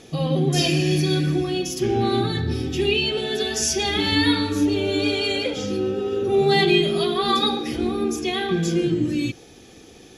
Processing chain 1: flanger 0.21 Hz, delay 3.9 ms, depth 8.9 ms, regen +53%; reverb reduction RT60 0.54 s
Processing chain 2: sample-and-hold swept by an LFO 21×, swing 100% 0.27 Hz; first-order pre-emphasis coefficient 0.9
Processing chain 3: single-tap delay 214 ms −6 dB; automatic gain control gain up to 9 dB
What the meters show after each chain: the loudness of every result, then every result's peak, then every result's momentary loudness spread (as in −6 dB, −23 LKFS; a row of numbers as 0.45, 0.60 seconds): −26.5, −31.0, −15.0 LKFS; −9.5, −7.0, −1.5 dBFS; 7, 7, 4 LU